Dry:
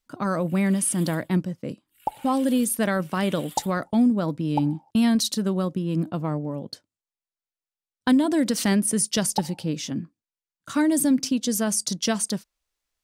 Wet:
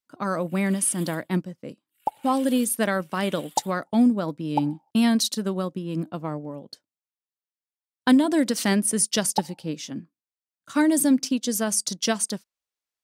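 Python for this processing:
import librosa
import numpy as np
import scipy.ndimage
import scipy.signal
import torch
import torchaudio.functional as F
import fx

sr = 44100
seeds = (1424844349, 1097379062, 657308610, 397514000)

y = fx.highpass(x, sr, hz=220.0, slope=6)
y = fx.upward_expand(y, sr, threshold_db=-43.0, expansion=1.5)
y = y * 10.0 ** (4.5 / 20.0)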